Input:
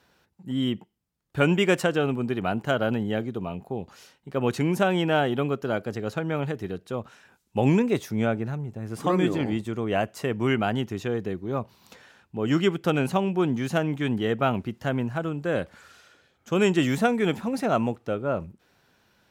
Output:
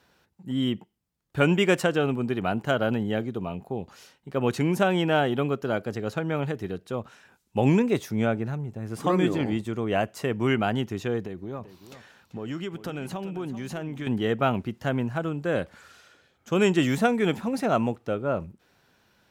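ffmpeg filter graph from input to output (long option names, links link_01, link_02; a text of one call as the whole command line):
ffmpeg -i in.wav -filter_complex "[0:a]asettb=1/sr,asplit=3[link_01][link_02][link_03];[link_01]atrim=end=11.204[link_04];[link_02]atrim=start=11.2:end=14.07,asetpts=PTS-STARTPTS,afade=type=in:duration=0.004:curve=qsin,afade=type=out:start_time=2.866:duration=0.004:curve=qsin,acompressor=threshold=-31dB:ratio=4:attack=3.2:release=140:knee=1:detection=peak,aecho=1:1:388:0.211,atrim=end_sample=126567[link_05];[link_03]atrim=start=14.066[link_06];[link_04][link_05]acrossfade=duration=0.004:curve1=hsin:curve2=qsin[link_07];[link_07][link_06]acrossfade=duration=0.004:curve1=qsin:curve2=hsin" out.wav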